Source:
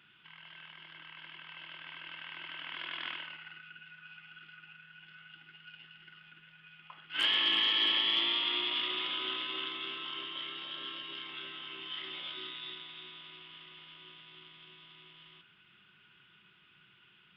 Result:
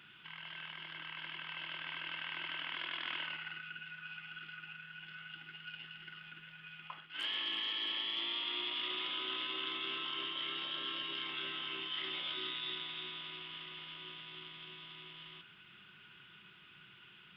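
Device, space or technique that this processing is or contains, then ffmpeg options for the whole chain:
compression on the reversed sound: -af "areverse,acompressor=threshold=-41dB:ratio=6,areverse,volume=4.5dB"

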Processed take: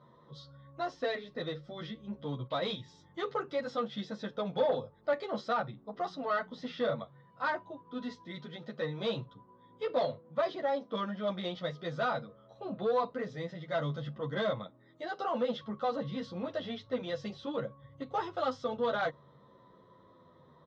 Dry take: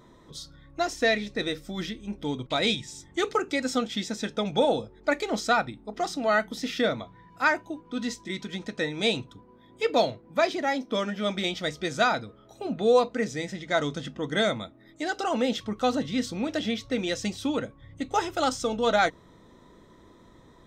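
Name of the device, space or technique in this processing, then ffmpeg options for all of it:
barber-pole flanger into a guitar amplifier: -filter_complex "[0:a]asplit=2[a][b];[b]adelay=10,afreqshift=-0.58[c];[a][c]amix=inputs=2:normalize=1,asoftclip=type=tanh:threshold=-22.5dB,highpass=100,equalizer=f=140:t=q:w=4:g=10,equalizer=f=310:t=q:w=4:g=-5,equalizer=f=540:t=q:w=4:g=9,equalizer=f=1.1k:t=q:w=4:g=9,equalizer=f=2.4k:t=q:w=4:g=-9,lowpass=f=4.2k:w=0.5412,lowpass=f=4.2k:w=1.3066,volume=-5dB"

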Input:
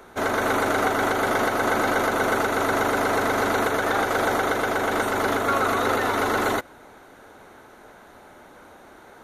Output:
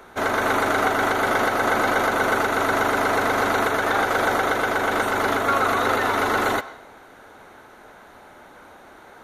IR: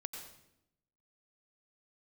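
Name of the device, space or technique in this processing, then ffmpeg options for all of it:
filtered reverb send: -filter_complex "[0:a]asplit=2[a][b];[b]highpass=550,lowpass=5.3k[c];[1:a]atrim=start_sample=2205[d];[c][d]afir=irnorm=-1:irlink=0,volume=-6dB[e];[a][e]amix=inputs=2:normalize=0"

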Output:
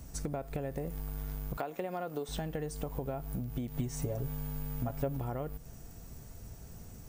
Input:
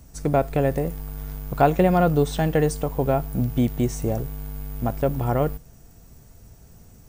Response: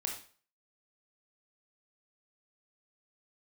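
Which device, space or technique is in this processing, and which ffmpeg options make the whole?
serial compression, peaks first: -filter_complex "[0:a]asettb=1/sr,asplit=3[a][b][c];[a]atrim=end=1.574[d];[b]atrim=start=1.57:end=2.29,asetpts=PTS-STARTPTS,afade=t=in:d=0.004:c=qsin,afade=t=out:st=0.716:d=0.004:c=qsin,highpass=290[e];[c]atrim=start=2.286[f];[d][e]acrossfade=d=0.004:c1=hsin:c2=qsin[g];[g][f]acrossfade=d=0.004:c1=qsin:c2=hsin,acompressor=threshold=-27dB:ratio=6,acompressor=threshold=-36dB:ratio=2.5,asettb=1/sr,asplit=3[h][i][j];[h]atrim=end=3.684[k];[i]atrim=start=3.68:end=5.17,asetpts=PTS-STARTPTS,afade=t=in:d=0.004:c=qsin,afade=t=out:st=1.486:d=0.004:c=qsin,aecho=1:1:7.2:0.8,atrim=end_sample=65709[l];[j]atrim=start=5.166[m];[k][l]acrossfade=d=0.004:c1=hsin:c2=qsin[n];[n][m]acrossfade=d=0.004:c1=qsin:c2=hsin"

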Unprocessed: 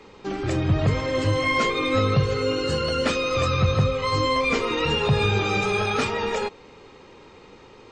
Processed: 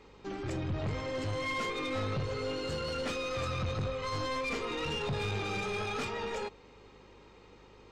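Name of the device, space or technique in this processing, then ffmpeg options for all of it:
valve amplifier with mains hum: -af "aeval=exprs='(tanh(11.2*val(0)+0.25)-tanh(0.25))/11.2':c=same,aeval=exprs='val(0)+0.00224*(sin(2*PI*50*n/s)+sin(2*PI*2*50*n/s)/2+sin(2*PI*3*50*n/s)/3+sin(2*PI*4*50*n/s)/4+sin(2*PI*5*50*n/s)/5)':c=same,volume=-8.5dB"

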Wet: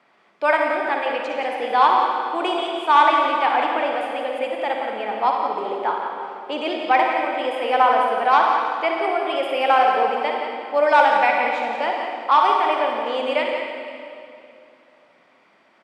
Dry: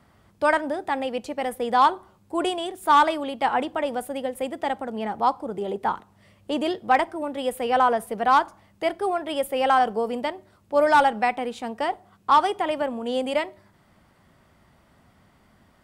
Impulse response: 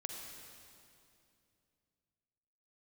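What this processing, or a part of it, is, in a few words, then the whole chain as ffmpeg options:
station announcement: -filter_complex "[0:a]highpass=400,lowpass=4.5k,equalizer=f=2.4k:t=o:w=0.3:g=8.5,aecho=1:1:58.31|174.9:0.355|0.355[a];[1:a]atrim=start_sample=2205[b];[a][b]afir=irnorm=-1:irlink=0,highpass=140,volume=4.5dB"

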